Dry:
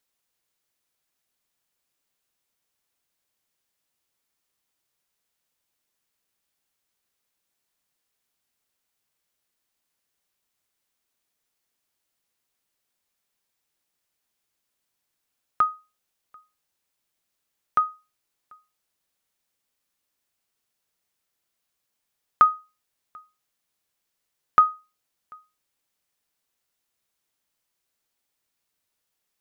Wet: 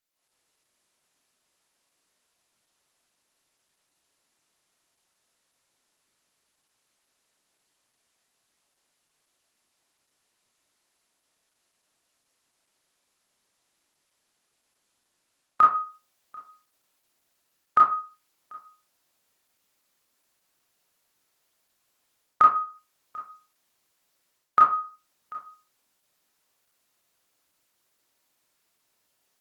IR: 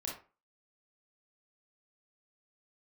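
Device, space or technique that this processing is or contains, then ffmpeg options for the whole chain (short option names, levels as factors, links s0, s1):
far-field microphone of a smart speaker: -filter_complex "[1:a]atrim=start_sample=2205[s0];[0:a][s0]afir=irnorm=-1:irlink=0,highpass=f=150:p=1,dynaudnorm=f=140:g=3:m=5.31,volume=0.562" -ar 48000 -c:a libopus -b:a 16k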